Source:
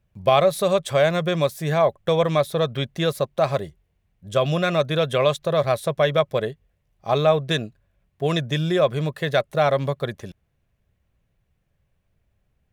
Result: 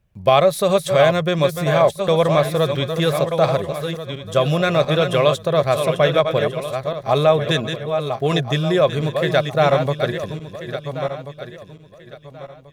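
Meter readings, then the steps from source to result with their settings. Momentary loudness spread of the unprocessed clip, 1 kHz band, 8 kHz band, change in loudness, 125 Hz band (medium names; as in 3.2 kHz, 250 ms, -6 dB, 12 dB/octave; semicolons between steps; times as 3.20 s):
8 LU, +4.0 dB, +4.0 dB, +3.5 dB, +4.0 dB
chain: backward echo that repeats 693 ms, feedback 50%, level -7 dB; trim +3 dB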